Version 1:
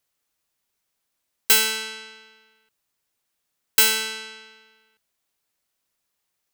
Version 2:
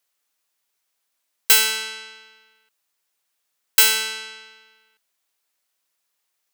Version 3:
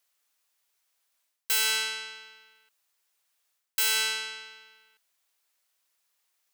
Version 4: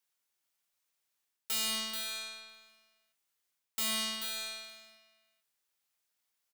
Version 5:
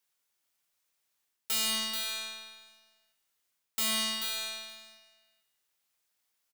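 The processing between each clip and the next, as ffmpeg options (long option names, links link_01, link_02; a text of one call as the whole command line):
ffmpeg -i in.wav -af "highpass=frequency=590:poles=1,volume=2.5dB" out.wav
ffmpeg -i in.wav -af "lowshelf=frequency=250:gain=-11.5,areverse,acompressor=threshold=-23dB:ratio=10,areverse" out.wav
ffmpeg -i in.wav -filter_complex "[0:a]asplit=2[link_01][link_02];[link_02]adelay=25,volume=-7dB[link_03];[link_01][link_03]amix=inputs=2:normalize=0,asplit=2[link_04][link_05];[link_05]aecho=0:1:435:0.473[link_06];[link_04][link_06]amix=inputs=2:normalize=0,aeval=exprs='val(0)*sgn(sin(2*PI*220*n/s))':channel_layout=same,volume=-8.5dB" out.wav
ffmpeg -i in.wav -af "aecho=1:1:158|316|474|632:0.15|0.0673|0.0303|0.0136,volume=3dB" out.wav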